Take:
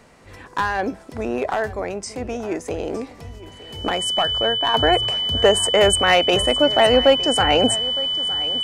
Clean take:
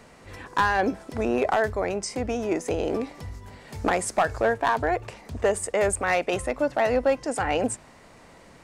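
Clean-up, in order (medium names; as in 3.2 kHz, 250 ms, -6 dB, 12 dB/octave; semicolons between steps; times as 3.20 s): band-stop 3 kHz, Q 30; inverse comb 912 ms -17 dB; gain correction -7.5 dB, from 4.74 s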